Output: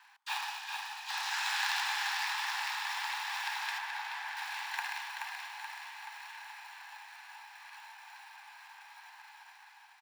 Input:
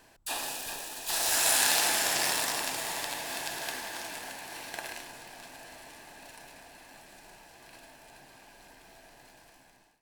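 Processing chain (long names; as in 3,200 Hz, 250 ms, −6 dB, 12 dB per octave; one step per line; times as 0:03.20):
high-frequency loss of the air 200 metres
in parallel at −4 dB: sample-rate reduction 1,600 Hz, jitter 0%
on the sum: Butterworth high-pass 810 Hz 96 dB per octave
on a send: repeating echo 428 ms, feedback 54%, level −4.5 dB
on the sum: speech leveller within 4 dB 2 s
0:03.78–0:04.37: high-shelf EQ 3,300 Hz −8 dB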